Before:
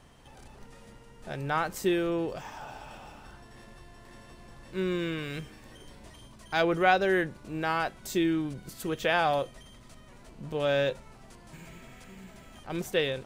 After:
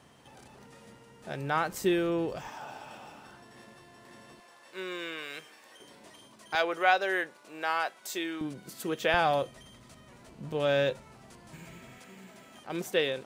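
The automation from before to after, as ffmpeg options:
ffmpeg -i in.wav -af "asetnsamples=nb_out_samples=441:pad=0,asendcmd='1.72 highpass f 51;2.47 highpass f 160;4.4 highpass f 590;5.8 highpass f 250;6.55 highpass f 570;8.41 highpass f 190;9.14 highpass f 75;11.98 highpass f 200',highpass=120" out.wav

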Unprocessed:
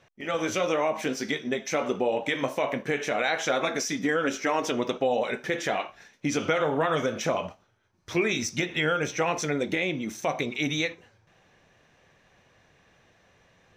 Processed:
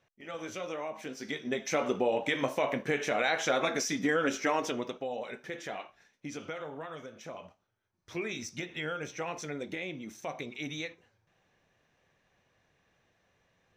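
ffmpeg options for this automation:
ffmpeg -i in.wav -af "volume=6dB,afade=type=in:start_time=1.15:duration=0.5:silence=0.334965,afade=type=out:start_time=4.48:duration=0.48:silence=0.354813,afade=type=out:start_time=5.86:duration=1.25:silence=0.421697,afade=type=in:start_time=7.11:duration=1.14:silence=0.375837" out.wav

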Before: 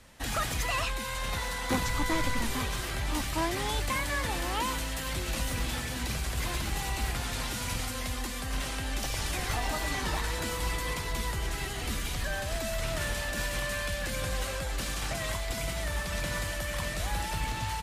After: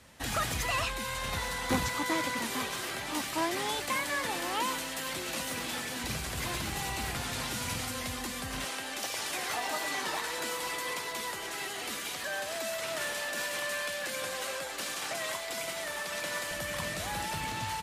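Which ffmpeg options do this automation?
ffmpeg -i in.wav -af "asetnsamples=nb_out_samples=441:pad=0,asendcmd='1.89 highpass f 230;6.04 highpass f 100;8.65 highpass f 350;16.51 highpass f 130',highpass=65" out.wav

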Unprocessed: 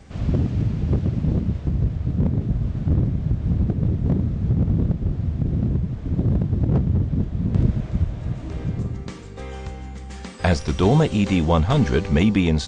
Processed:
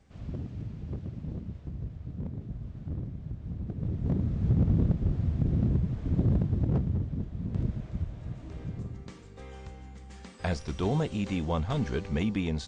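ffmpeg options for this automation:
ffmpeg -i in.wav -af "volume=-4.5dB,afade=type=in:start_time=3.62:duration=0.9:silence=0.266073,afade=type=out:start_time=6.19:duration=0.97:silence=0.446684" out.wav

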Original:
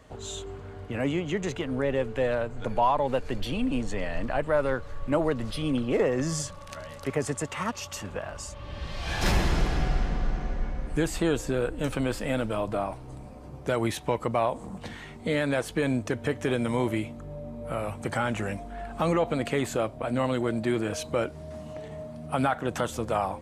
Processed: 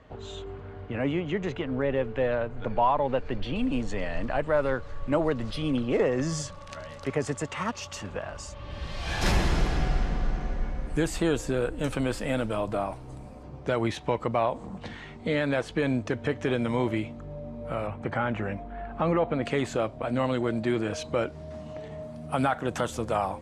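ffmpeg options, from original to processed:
ffmpeg -i in.wav -af "asetnsamples=nb_out_samples=441:pad=0,asendcmd='3.56 lowpass f 6900;8.71 lowpass f 12000;13.43 lowpass f 5300;17.87 lowpass f 2400;19.43 lowpass f 6200;22.03 lowpass f 11000',lowpass=3300" out.wav

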